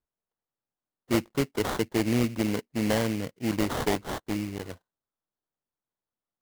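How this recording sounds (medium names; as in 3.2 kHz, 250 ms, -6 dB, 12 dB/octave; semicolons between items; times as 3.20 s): aliases and images of a low sample rate 2.5 kHz, jitter 20%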